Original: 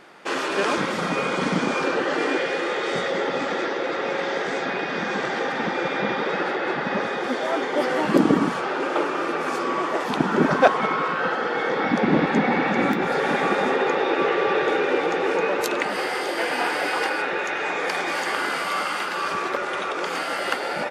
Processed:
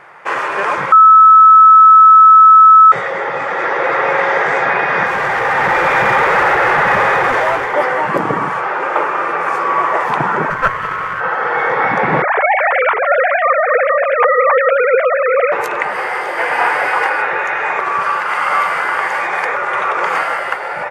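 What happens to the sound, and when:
0.92–2.92 s: bleep 1.3 kHz -9.5 dBFS
5.06–7.74 s: hard clipper -26.5 dBFS
10.50–11.21 s: comb filter that takes the minimum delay 0.65 ms
12.22–15.52 s: formants replaced by sine waves
17.79–19.55 s: reverse
whole clip: ten-band graphic EQ 125 Hz +12 dB, 250 Hz -11 dB, 500 Hz +5 dB, 1 kHz +11 dB, 2 kHz +10 dB, 4 kHz -7 dB; level rider; trim -1 dB

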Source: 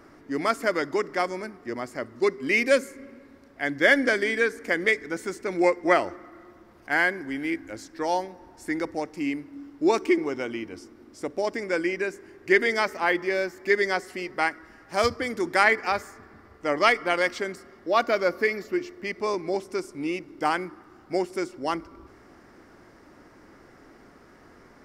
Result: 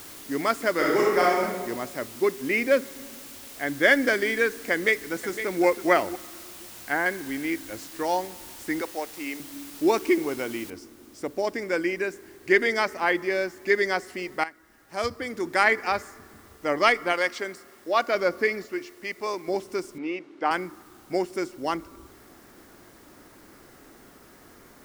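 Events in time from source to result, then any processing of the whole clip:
0.73–1.43 s: reverb throw, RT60 1.2 s, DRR -4.5 dB
2.12–3.83 s: low-pass 2.2 kHz 6 dB/octave
4.72–5.64 s: echo throw 510 ms, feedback 10%, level -11 dB
6.18–7.06 s: low-pass that closes with the level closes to 1.3 kHz, closed at -21.5 dBFS
8.81–9.40 s: high-pass 430 Hz
10.70 s: noise floor step -44 dB -58 dB
14.44–15.80 s: fade in linear, from -14 dB
17.12–18.15 s: bass shelf 250 Hz -10 dB
18.66–19.48 s: bass shelf 380 Hz -9.5 dB
19.98–20.51 s: band-pass 290–3100 Hz

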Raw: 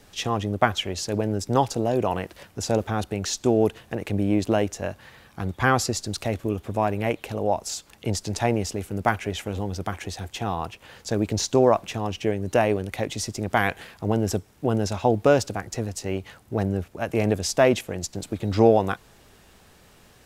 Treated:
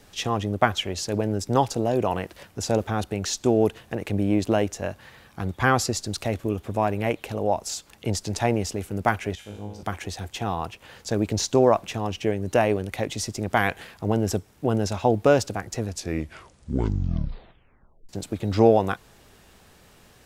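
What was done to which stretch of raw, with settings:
9.35–9.83 s: feedback comb 52 Hz, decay 0.81 s, mix 90%
15.81 s: tape stop 2.28 s

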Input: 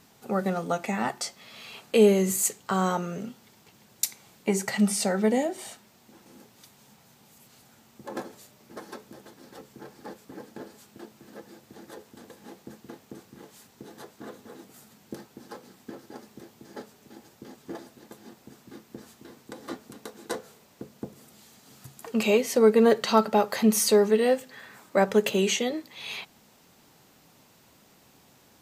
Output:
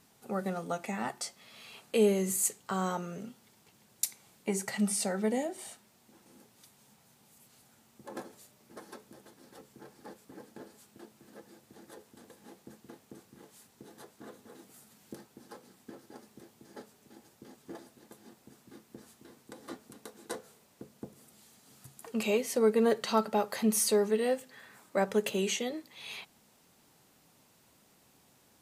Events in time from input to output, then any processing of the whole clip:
14.55–15.26 s: tape noise reduction on one side only encoder only
whole clip: peaking EQ 9.9 kHz +6.5 dB 0.53 oct; trim -7 dB

